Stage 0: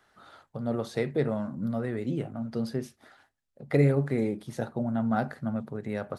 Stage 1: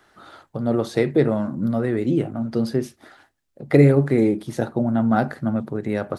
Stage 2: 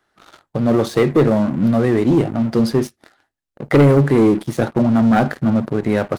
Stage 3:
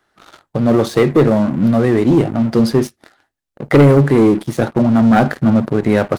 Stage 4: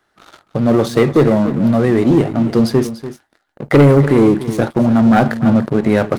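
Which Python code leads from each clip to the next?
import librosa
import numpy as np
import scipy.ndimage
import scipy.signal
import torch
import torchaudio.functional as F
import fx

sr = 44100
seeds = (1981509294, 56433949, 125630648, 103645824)

y1 = fx.peak_eq(x, sr, hz=330.0, db=7.0, octaves=0.37)
y1 = y1 * librosa.db_to_amplitude(7.5)
y2 = fx.leveller(y1, sr, passes=3)
y2 = y2 * librosa.db_to_amplitude(-3.5)
y3 = fx.rider(y2, sr, range_db=10, speed_s=2.0)
y3 = y3 * librosa.db_to_amplitude(2.0)
y4 = y3 + 10.0 ** (-13.5 / 20.0) * np.pad(y3, (int(291 * sr / 1000.0), 0))[:len(y3)]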